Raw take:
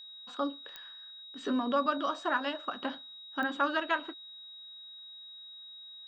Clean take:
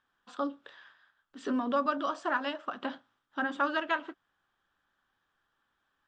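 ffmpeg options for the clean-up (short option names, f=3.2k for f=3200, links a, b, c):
-af "adeclick=t=4,bandreject=f=3.8k:w=30"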